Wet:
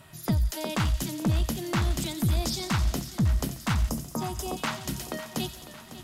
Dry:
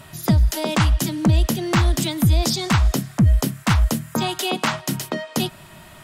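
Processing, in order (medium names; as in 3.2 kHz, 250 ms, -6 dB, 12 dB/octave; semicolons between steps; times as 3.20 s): on a send: feedback echo behind a high-pass 88 ms, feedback 72%, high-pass 4.1 kHz, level -7.5 dB; on the sum: time-frequency box 3.90–4.57 s, 1.3–4.8 kHz -12 dB; Chebyshev shaper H 4 -26 dB, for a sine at -6.5 dBFS; modulated delay 552 ms, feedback 54%, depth 69 cents, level -14 dB; trim -9 dB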